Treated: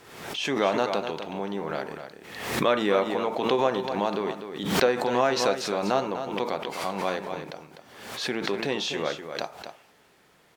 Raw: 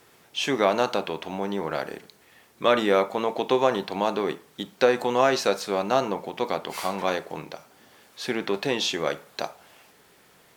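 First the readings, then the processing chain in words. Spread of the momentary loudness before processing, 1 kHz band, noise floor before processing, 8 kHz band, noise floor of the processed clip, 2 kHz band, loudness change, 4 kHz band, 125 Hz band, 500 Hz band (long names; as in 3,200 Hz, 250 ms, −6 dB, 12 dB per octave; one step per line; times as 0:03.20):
14 LU, −1.5 dB, −57 dBFS, −0.5 dB, −60 dBFS, −1.0 dB, −1.5 dB, −1.0 dB, +1.0 dB, −2.0 dB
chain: high-shelf EQ 8,100 Hz −8.5 dB
on a send: single-tap delay 250 ms −9 dB
on the sum: background raised ahead of every attack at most 60 dB per second
level −3 dB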